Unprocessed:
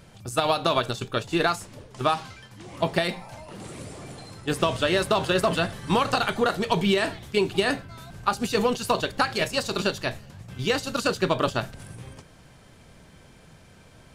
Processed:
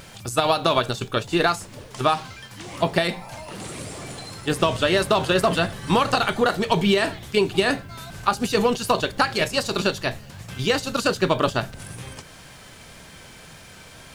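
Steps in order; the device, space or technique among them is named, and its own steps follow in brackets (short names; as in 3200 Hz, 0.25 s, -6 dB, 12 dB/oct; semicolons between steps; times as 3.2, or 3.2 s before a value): noise-reduction cassette on a plain deck (mismatched tape noise reduction encoder only; wow and flutter 25 cents; white noise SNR 40 dB); gain +3 dB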